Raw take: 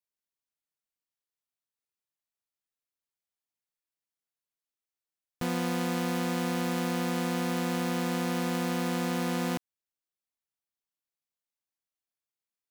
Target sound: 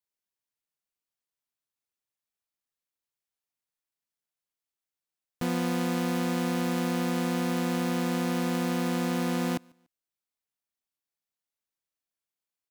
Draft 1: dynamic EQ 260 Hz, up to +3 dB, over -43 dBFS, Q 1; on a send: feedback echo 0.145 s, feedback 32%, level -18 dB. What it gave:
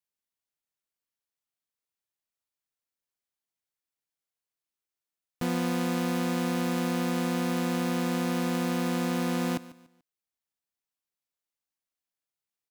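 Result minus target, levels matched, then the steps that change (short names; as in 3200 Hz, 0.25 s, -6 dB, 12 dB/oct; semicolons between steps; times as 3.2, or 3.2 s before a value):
echo-to-direct +11 dB
change: feedback echo 0.145 s, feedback 32%, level -29 dB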